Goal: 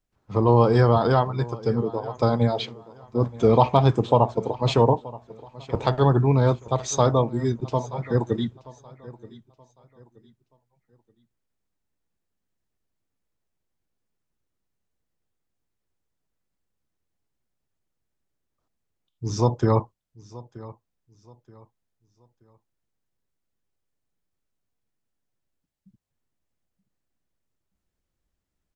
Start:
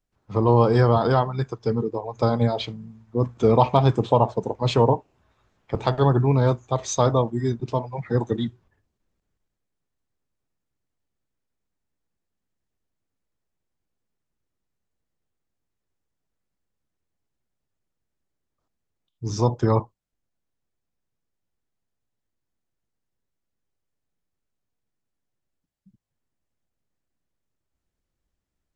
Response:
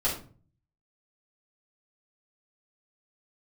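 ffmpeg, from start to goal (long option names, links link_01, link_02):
-filter_complex "[0:a]asettb=1/sr,asplit=3[link_01][link_02][link_03];[link_01]atrim=end=2.604[link_04];[link_02]atrim=start=2.6:end=3.03,asetpts=PTS-STARTPTS,afade=type=in:duration=0.004:curve=qsin,afade=type=out:start_time=0.426:duration=0.004:curve=qsin,highpass=540[link_05];[link_03]atrim=start=3.026[link_06];[link_04][link_05]acrossfade=duration=0.004:curve1=hsin:curve2=qsin[link_07];[link_07][link_06]acrossfade=duration=0.004:curve1=qsin:curve2=hsin,aecho=1:1:927|1854|2781:0.106|0.0328|0.0102"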